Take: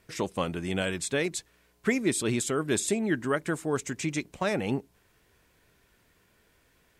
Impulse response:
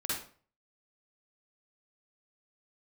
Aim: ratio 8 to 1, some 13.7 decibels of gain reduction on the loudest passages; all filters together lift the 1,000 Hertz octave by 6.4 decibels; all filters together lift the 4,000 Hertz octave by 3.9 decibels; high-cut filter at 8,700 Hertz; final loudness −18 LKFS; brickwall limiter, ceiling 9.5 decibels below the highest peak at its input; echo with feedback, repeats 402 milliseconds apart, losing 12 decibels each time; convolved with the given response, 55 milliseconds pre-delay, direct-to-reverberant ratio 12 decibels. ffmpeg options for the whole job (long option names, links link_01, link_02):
-filter_complex "[0:a]lowpass=8700,equalizer=frequency=1000:width_type=o:gain=8,equalizer=frequency=4000:width_type=o:gain=4.5,acompressor=threshold=-35dB:ratio=8,alimiter=level_in=7.5dB:limit=-24dB:level=0:latency=1,volume=-7.5dB,aecho=1:1:402|804|1206:0.251|0.0628|0.0157,asplit=2[link_01][link_02];[1:a]atrim=start_sample=2205,adelay=55[link_03];[link_02][link_03]afir=irnorm=-1:irlink=0,volume=-16.5dB[link_04];[link_01][link_04]amix=inputs=2:normalize=0,volume=23.5dB"